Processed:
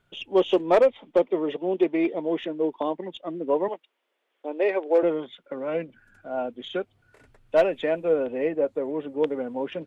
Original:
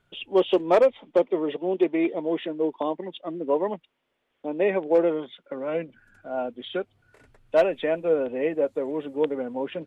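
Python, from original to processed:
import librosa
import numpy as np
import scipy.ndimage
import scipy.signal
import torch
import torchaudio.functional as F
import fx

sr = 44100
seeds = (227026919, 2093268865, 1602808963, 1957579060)

y = fx.tracing_dist(x, sr, depth_ms=0.021)
y = fx.highpass(y, sr, hz=330.0, slope=24, at=(3.68, 5.03))
y = fx.high_shelf(y, sr, hz=3900.0, db=-9.0, at=(8.43, 9.23))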